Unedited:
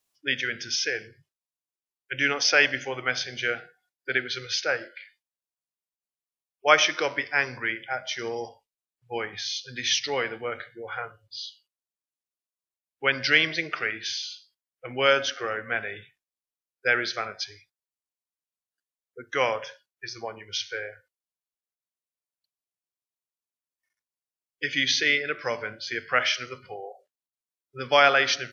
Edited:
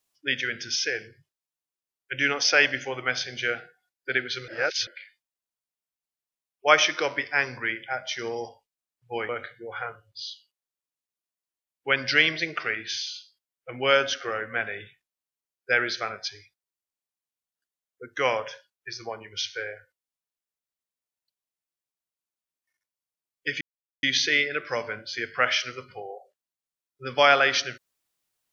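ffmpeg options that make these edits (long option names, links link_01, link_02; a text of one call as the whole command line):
ffmpeg -i in.wav -filter_complex "[0:a]asplit=5[link_01][link_02][link_03][link_04][link_05];[link_01]atrim=end=4.482[link_06];[link_02]atrim=start=4.478:end=4.872,asetpts=PTS-STARTPTS,areverse[link_07];[link_03]atrim=start=4.868:end=9.292[link_08];[link_04]atrim=start=10.448:end=24.77,asetpts=PTS-STARTPTS,afade=type=out:start_time=14.318:duration=0.004:curve=hsin,apad=pad_dur=0.42[link_09];[link_05]atrim=start=24.77,asetpts=PTS-STARTPTS,afade=type=in:duration=0.004:curve=hsin[link_10];[link_06][link_07]acrossfade=duration=0.004:curve1=hsin:curve2=hsin[link_11];[link_11][link_08]acrossfade=duration=0.004:curve1=hsin:curve2=hsin[link_12];[link_09][link_10]concat=n=2:v=0:a=1[link_13];[link_12][link_13]acrossfade=duration=0.004:curve1=hsin:curve2=hsin" out.wav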